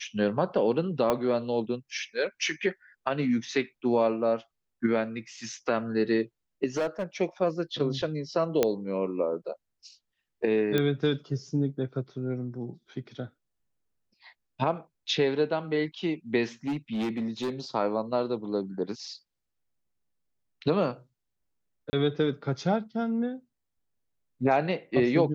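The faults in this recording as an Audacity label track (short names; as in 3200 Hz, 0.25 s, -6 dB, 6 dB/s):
1.100000	1.100000	pop -12 dBFS
6.770000	7.040000	clipped -24 dBFS
8.630000	8.630000	pop -9 dBFS
10.780000	10.780000	pop -13 dBFS
16.670000	17.500000	clipped -26 dBFS
21.900000	21.930000	gap 30 ms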